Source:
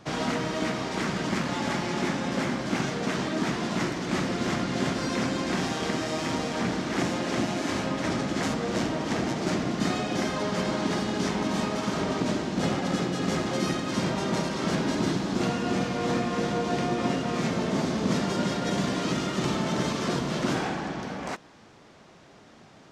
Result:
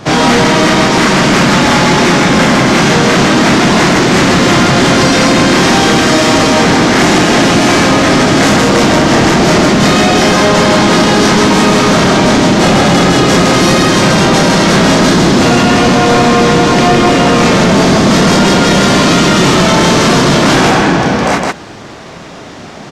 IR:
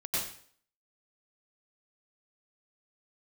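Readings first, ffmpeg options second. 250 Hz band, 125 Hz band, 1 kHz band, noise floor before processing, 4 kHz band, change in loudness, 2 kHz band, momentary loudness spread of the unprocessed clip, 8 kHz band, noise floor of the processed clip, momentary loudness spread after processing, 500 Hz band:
+19.0 dB, +19.5 dB, +21.5 dB, -52 dBFS, +22.5 dB, +20.5 dB, +22.5 dB, 2 LU, +22.5 dB, -29 dBFS, 0 LU, +20.5 dB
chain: -af "aecho=1:1:29.15|160.3:0.794|0.891,apsyclip=23dB,volume=-3dB"

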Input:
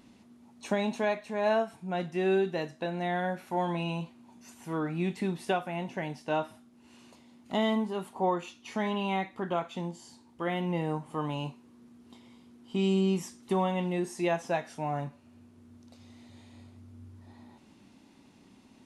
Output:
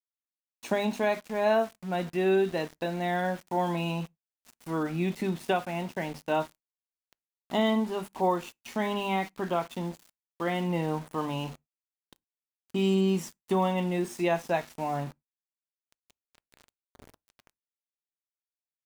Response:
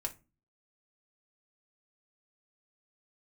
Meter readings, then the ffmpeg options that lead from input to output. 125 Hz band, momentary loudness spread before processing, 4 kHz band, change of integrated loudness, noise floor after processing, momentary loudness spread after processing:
+1.0 dB, 10 LU, +2.0 dB, +2.0 dB, under -85 dBFS, 10 LU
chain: -filter_complex "[0:a]bandreject=f=50:t=h:w=6,bandreject=f=100:t=h:w=6,bandreject=f=150:t=h:w=6,bandreject=f=200:t=h:w=6,bandreject=f=250:t=h:w=6,aeval=exprs='val(0)*gte(abs(val(0)),0.00631)':c=same,asplit=2[a][b];[1:a]atrim=start_sample=2205,afade=t=out:st=0.16:d=0.01,atrim=end_sample=7497[c];[b][c]afir=irnorm=-1:irlink=0,volume=-21dB[d];[a][d]amix=inputs=2:normalize=0,volume=1.5dB"

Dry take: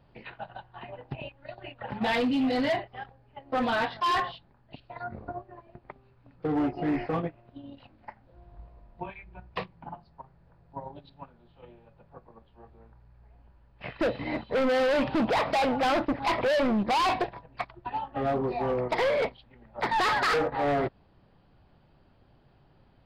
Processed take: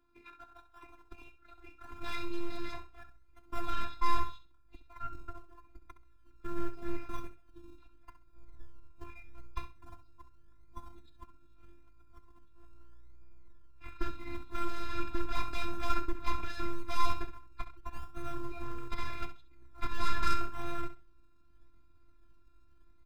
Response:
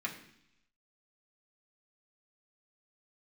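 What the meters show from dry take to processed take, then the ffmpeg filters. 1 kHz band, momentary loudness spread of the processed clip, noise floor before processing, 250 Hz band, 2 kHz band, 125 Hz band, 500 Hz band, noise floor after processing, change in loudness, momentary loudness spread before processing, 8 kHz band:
-9.5 dB, 23 LU, -62 dBFS, -14.5 dB, -12.5 dB, -7.0 dB, -18.5 dB, -60 dBFS, -11.5 dB, 20 LU, -5.5 dB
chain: -filter_complex "[0:a]aeval=exprs='if(lt(val(0),0),0.708*val(0),val(0))':c=same,highpass=f=65:w=0.5412,highpass=f=65:w=1.3066,equalizer=f=1.4k:t=o:w=0.25:g=6,bandreject=f=2.9k:w=5.6,aecho=1:1:0.8:0.98,acrossover=split=240[a][b];[a]acompressor=threshold=-39dB:ratio=6[c];[c][b]amix=inputs=2:normalize=0,aeval=exprs='0.282*(cos(1*acos(clip(val(0)/0.282,-1,1)))-cos(1*PI/2))+0.126*(cos(2*acos(clip(val(0)/0.282,-1,1)))-cos(2*PI/2))+0.0708*(cos(4*acos(clip(val(0)/0.282,-1,1)))-cos(4*PI/2))':c=same,asubboost=boost=11:cutoff=99,asplit=2[d][e];[e]acrusher=samples=26:mix=1:aa=0.000001:lfo=1:lforange=15.6:lforate=0.81,volume=-11dB[f];[d][f]amix=inputs=2:normalize=0,afftfilt=real='hypot(re,im)*cos(PI*b)':imag='0':win_size=512:overlap=0.75,aecho=1:1:66|132|198:0.251|0.0527|0.0111,volume=-8.5dB"

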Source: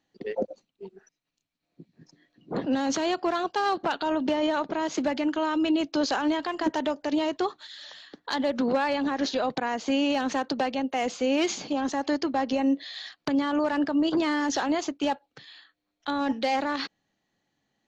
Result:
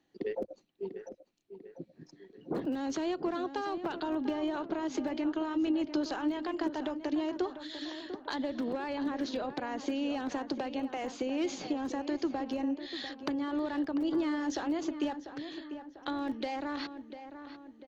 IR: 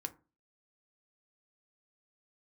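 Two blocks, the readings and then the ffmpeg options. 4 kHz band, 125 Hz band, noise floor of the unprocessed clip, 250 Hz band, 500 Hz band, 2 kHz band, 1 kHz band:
-9.5 dB, -5.5 dB, -81 dBFS, -5.5 dB, -7.5 dB, -10.0 dB, -10.0 dB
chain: -filter_complex "[0:a]highshelf=f=5.7k:g=-4.5,acrossover=split=100[a][b];[a]aeval=exprs='(mod(316*val(0)+1,2)-1)/316':c=same[c];[b]acompressor=threshold=-35dB:ratio=5[d];[c][d]amix=inputs=2:normalize=0,equalizer=f=340:w=2.5:g=7,asplit=2[e][f];[f]adelay=695,lowpass=f=2.6k:p=1,volume=-10.5dB,asplit=2[g][h];[h]adelay=695,lowpass=f=2.6k:p=1,volume=0.51,asplit=2[i][j];[j]adelay=695,lowpass=f=2.6k:p=1,volume=0.51,asplit=2[k][l];[l]adelay=695,lowpass=f=2.6k:p=1,volume=0.51,asplit=2[m][n];[n]adelay=695,lowpass=f=2.6k:p=1,volume=0.51,asplit=2[o][p];[p]adelay=695,lowpass=f=2.6k:p=1,volume=0.51[q];[e][g][i][k][m][o][q]amix=inputs=7:normalize=0"

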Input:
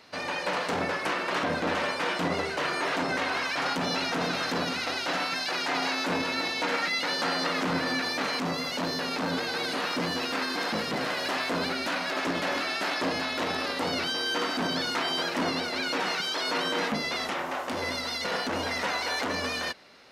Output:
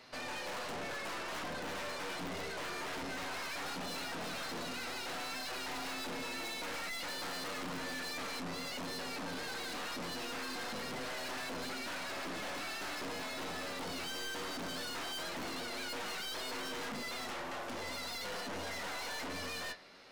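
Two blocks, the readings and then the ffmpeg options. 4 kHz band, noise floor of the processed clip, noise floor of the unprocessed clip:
-11.0 dB, -42 dBFS, -33 dBFS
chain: -af "aeval=exprs='(mod(7.94*val(0)+1,2)-1)/7.94':c=same,flanger=delay=7.9:depth=3.1:regen=57:speed=0.18:shape=sinusoidal,aeval=exprs='(tanh(126*val(0)+0.4)-tanh(0.4))/126':c=same,volume=2.5dB"

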